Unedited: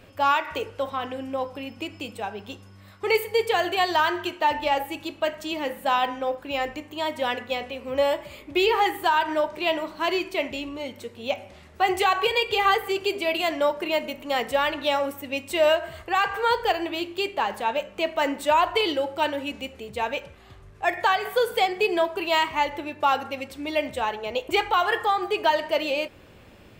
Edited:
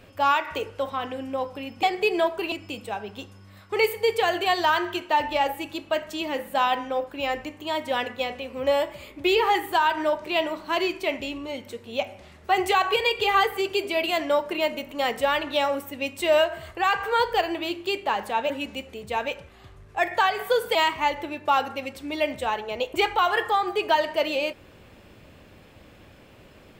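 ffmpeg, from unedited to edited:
ffmpeg -i in.wav -filter_complex "[0:a]asplit=5[link_01][link_02][link_03][link_04][link_05];[link_01]atrim=end=1.832[link_06];[link_02]atrim=start=21.608:end=22.302[link_07];[link_03]atrim=start=1.828:end=17.812[link_08];[link_04]atrim=start=19.358:end=21.612[link_09];[link_05]atrim=start=22.298[link_10];[link_06][link_07]acrossfade=duration=0.004:curve1=hsin:curve2=hsin[link_11];[link_11][link_08]acrossfade=duration=0.004:curve1=hsin:curve2=hsin[link_12];[link_12][link_09]acrossfade=duration=0.004:curve1=hsin:curve2=hsin[link_13];[link_13][link_10]acrossfade=duration=0.004:curve1=hsin:curve2=hsin" out.wav

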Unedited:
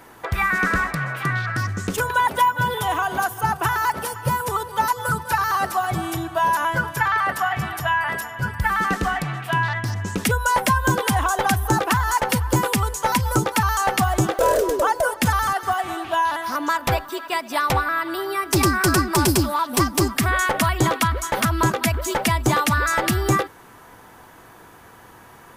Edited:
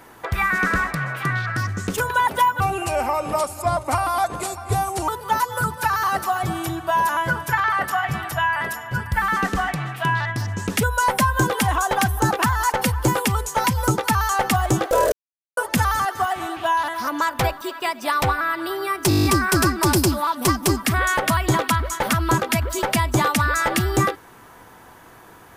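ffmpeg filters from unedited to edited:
ffmpeg -i in.wav -filter_complex "[0:a]asplit=13[link_01][link_02][link_03][link_04][link_05][link_06][link_07][link_08][link_09][link_10][link_11][link_12][link_13];[link_01]atrim=end=2.604[link_14];[link_02]atrim=start=2.6:end=4.56,asetpts=PTS-STARTPTS,asetrate=34839,aresample=44100[link_15];[link_03]atrim=start=4.556:end=14.6,asetpts=PTS-STARTPTS,afade=type=out:start_time=10.04:duration=0.004:curve=hsin[link_16];[link_04]atrim=start=14.6:end=15.05,asetpts=PTS-STARTPTS,volume=0[link_17];[link_05]atrim=start=15.05:end=18.592,asetpts=PTS-STARTPTS,afade=type=in:duration=0.004:curve=hsin[link_18];[link_06]atrim=start=18.568:end=18.592[link_19];[link_07]atrim=start=18.568:end=18.592[link_20];[link_08]atrim=start=18.568:end=18.592[link_21];[link_09]atrim=start=18.568:end=18.592[link_22];[link_10]atrim=start=18.568:end=18.592[link_23];[link_11]atrim=start=18.568:end=18.592[link_24];[link_12]atrim=start=18.568:end=18.592[link_25];[link_13]atrim=start=18.568[link_26];[link_14][link_15]acrossfade=duration=0.004:curve1=hsin:curve2=hsin[link_27];[link_16][link_17][link_18]concat=n=3:v=0:a=1[link_28];[link_27][link_28]acrossfade=duration=0.004:curve1=hsin:curve2=hsin[link_29];[link_29][link_19]acrossfade=duration=0.004:curve1=hsin:curve2=hsin[link_30];[link_30][link_20]acrossfade=duration=0.004:curve1=hsin:curve2=hsin[link_31];[link_31][link_21]acrossfade=duration=0.004:curve1=hsin:curve2=hsin[link_32];[link_32][link_22]acrossfade=duration=0.004:curve1=hsin:curve2=hsin[link_33];[link_33][link_23]acrossfade=duration=0.004:curve1=hsin:curve2=hsin[link_34];[link_34][link_24]acrossfade=duration=0.004:curve1=hsin:curve2=hsin[link_35];[link_35][link_25]acrossfade=duration=0.004:curve1=hsin:curve2=hsin[link_36];[link_36][link_26]acrossfade=duration=0.004:curve1=hsin:curve2=hsin" out.wav

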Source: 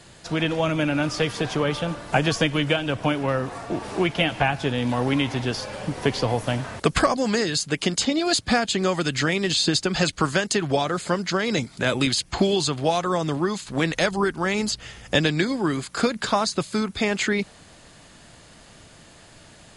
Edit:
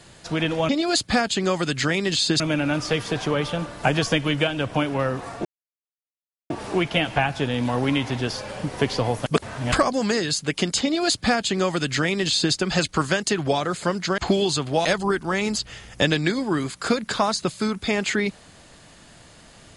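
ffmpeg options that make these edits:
ffmpeg -i in.wav -filter_complex "[0:a]asplit=8[link_01][link_02][link_03][link_04][link_05][link_06][link_07][link_08];[link_01]atrim=end=0.692[link_09];[link_02]atrim=start=8.068:end=9.782[link_10];[link_03]atrim=start=0.688:end=3.74,asetpts=PTS-STARTPTS,afade=type=out:start_time=3.048:duration=0.004:curve=hsin,apad=pad_dur=1.05[link_11];[link_04]atrim=start=3.74:end=6.502,asetpts=PTS-STARTPTS,afade=type=in:duration=0.004:curve=hsin[link_12];[link_05]atrim=start=6.498:end=6.962,asetpts=PTS-STARTPTS,areverse[link_13];[link_06]atrim=start=6.958:end=11.422[link_14];[link_07]atrim=start=12.288:end=12.962[link_15];[link_08]atrim=start=13.978[link_16];[link_09][link_10]acrossfade=duration=0.004:curve1=hsin:curve2=hsin[link_17];[link_11][link_12]concat=n=2:v=0:a=1[link_18];[link_17][link_18]acrossfade=duration=0.004:curve1=hsin:curve2=hsin[link_19];[link_19][link_13]acrossfade=duration=0.004:curve1=hsin:curve2=hsin[link_20];[link_20][link_14]acrossfade=duration=0.004:curve1=hsin:curve2=hsin[link_21];[link_21][link_15]acrossfade=duration=0.004:curve1=hsin:curve2=hsin[link_22];[link_22][link_16]acrossfade=duration=0.004:curve1=hsin:curve2=hsin" out.wav

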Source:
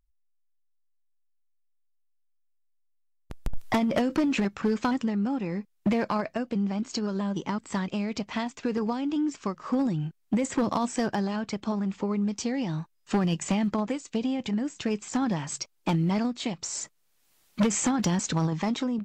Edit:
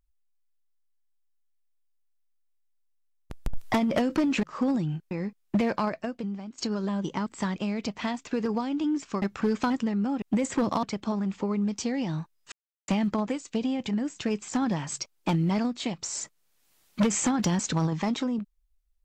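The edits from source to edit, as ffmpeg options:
ffmpeg -i in.wav -filter_complex "[0:a]asplit=9[link_01][link_02][link_03][link_04][link_05][link_06][link_07][link_08][link_09];[link_01]atrim=end=4.432[link_10];[link_02]atrim=start=9.538:end=10.222[link_11];[link_03]atrim=start=5.428:end=6.9,asetpts=PTS-STARTPTS,afade=type=out:start_time=0.752:duration=0.72:silence=0.177828[link_12];[link_04]atrim=start=6.9:end=9.542,asetpts=PTS-STARTPTS,afade=type=in:duration=0.004:curve=hsin:silence=0.177828[link_13];[link_05]atrim=start=4.428:end=5.432[link_14];[link_06]atrim=start=10.218:end=10.832[link_15];[link_07]atrim=start=11.428:end=13.12,asetpts=PTS-STARTPTS,afade=type=out:start_time=1.688:duration=0.004:curve=hsin[link_16];[link_08]atrim=start=13.12:end=13.48,asetpts=PTS-STARTPTS,volume=0[link_17];[link_09]atrim=start=13.48,asetpts=PTS-STARTPTS,afade=type=in:duration=0.004:curve=hsin[link_18];[link_10][link_11]acrossfade=duration=0.004:curve1=hsin:curve2=hsin[link_19];[link_12][link_13]concat=n=2:v=0:a=1[link_20];[link_19][link_20]acrossfade=duration=0.004:curve1=hsin:curve2=hsin[link_21];[link_21][link_14]acrossfade=duration=0.004:curve1=hsin:curve2=hsin[link_22];[link_22][link_15]acrossfade=duration=0.004:curve1=hsin:curve2=hsin[link_23];[link_16][link_17][link_18]concat=n=3:v=0:a=1[link_24];[link_23][link_24]acrossfade=duration=0.004:curve1=hsin:curve2=hsin" out.wav

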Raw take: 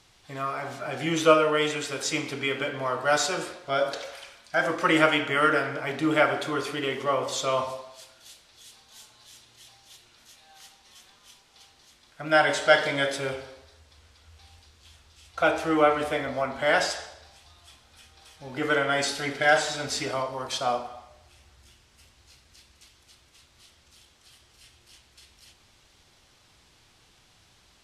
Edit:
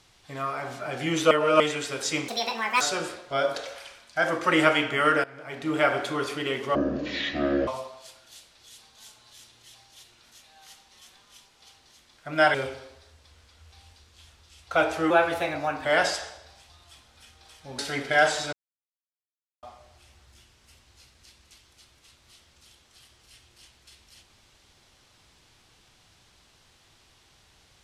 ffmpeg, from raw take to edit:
ffmpeg -i in.wav -filter_complex "[0:a]asplit=14[link_01][link_02][link_03][link_04][link_05][link_06][link_07][link_08][link_09][link_10][link_11][link_12][link_13][link_14];[link_01]atrim=end=1.312[link_15];[link_02]atrim=start=1.308:end=1.602,asetpts=PTS-STARTPTS,areverse[link_16];[link_03]atrim=start=1.598:end=2.284[link_17];[link_04]atrim=start=2.28:end=3.18,asetpts=PTS-STARTPTS,asetrate=74970,aresample=44100,atrim=end_sample=23347,asetpts=PTS-STARTPTS[link_18];[link_05]atrim=start=3.176:end=5.61,asetpts=PTS-STARTPTS,afade=type=out:start_time=2.43:duration=0.004:curve=hsin:silence=0.105925[link_19];[link_06]atrim=start=5.61:end=7.124,asetpts=PTS-STARTPTS,afade=type=in:duration=0.71:silence=0.105925[link_20];[link_07]atrim=start=7.12:end=7.61,asetpts=PTS-STARTPTS,asetrate=23373,aresample=44100[link_21];[link_08]atrim=start=7.606:end=12.482[link_22];[link_09]atrim=start=13.208:end=15.774[link_23];[link_10]atrim=start=15.77:end=16.61,asetpts=PTS-STARTPTS,asetrate=49833,aresample=44100,atrim=end_sample=32782,asetpts=PTS-STARTPTS[link_24];[link_11]atrim=start=16.606:end=18.552[link_25];[link_12]atrim=start=19.088:end=19.83,asetpts=PTS-STARTPTS,afade=type=out:start_time=0.738:duration=0.004:curve=hsin[link_26];[link_13]atrim=start=19.83:end=20.93,asetpts=PTS-STARTPTS,volume=0[link_27];[link_14]atrim=start=20.93,asetpts=PTS-STARTPTS,afade=type=in:duration=0.004:curve=hsin[link_28];[link_15][link_16]acrossfade=duration=0.004:curve1=hsin:curve2=hsin[link_29];[link_29][link_17]acrossfade=duration=0.004:curve1=hsin:curve2=hsin[link_30];[link_30][link_18]acrossfade=duration=0.004:curve1=hsin:curve2=hsin[link_31];[link_19][link_20]concat=n=2:v=0:a=1[link_32];[link_31][link_32]acrossfade=duration=0.004:curve1=hsin:curve2=hsin[link_33];[link_33][link_21]acrossfade=duration=0.004:curve1=hsin:curve2=hsin[link_34];[link_34][link_22]acrossfade=duration=0.004:curve1=hsin:curve2=hsin[link_35];[link_35][link_23]acrossfade=duration=0.004:curve1=hsin:curve2=hsin[link_36];[link_36][link_24]acrossfade=duration=0.004:curve1=hsin:curve2=hsin[link_37];[link_37][link_25]acrossfade=duration=0.004:curve1=hsin:curve2=hsin[link_38];[link_26][link_27][link_28]concat=n=3:v=0:a=1[link_39];[link_38][link_39]acrossfade=duration=0.004:curve1=hsin:curve2=hsin" out.wav

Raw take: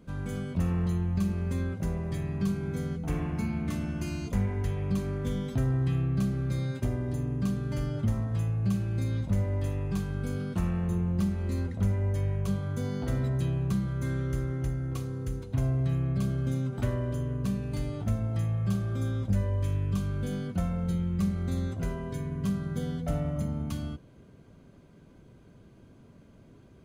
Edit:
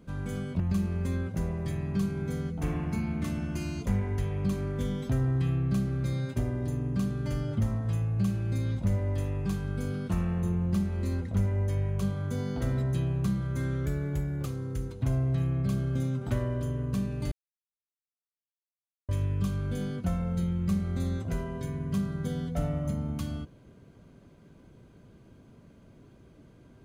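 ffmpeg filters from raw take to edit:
ffmpeg -i in.wav -filter_complex "[0:a]asplit=6[link_01][link_02][link_03][link_04][link_05][link_06];[link_01]atrim=end=0.602[link_07];[link_02]atrim=start=1.058:end=14.324[link_08];[link_03]atrim=start=14.32:end=14.97,asetpts=PTS-STARTPTS,asetrate=48069,aresample=44100,atrim=end_sample=26298,asetpts=PTS-STARTPTS[link_09];[link_04]atrim=start=14.966:end=17.83,asetpts=PTS-STARTPTS,afade=type=out:start_time=2.86:duration=0.004:curve=hsin[link_10];[link_05]atrim=start=17.83:end=19.6,asetpts=PTS-STARTPTS,volume=0[link_11];[link_06]atrim=start=19.6,asetpts=PTS-STARTPTS,afade=type=in:duration=0.004:curve=hsin[link_12];[link_07][link_08]acrossfade=duration=0.004:curve1=hsin:curve2=hsin[link_13];[link_13][link_09]acrossfade=duration=0.004:curve1=hsin:curve2=hsin[link_14];[link_10][link_11][link_12]concat=n=3:v=0:a=1[link_15];[link_14][link_15]acrossfade=duration=0.004:curve1=hsin:curve2=hsin" out.wav

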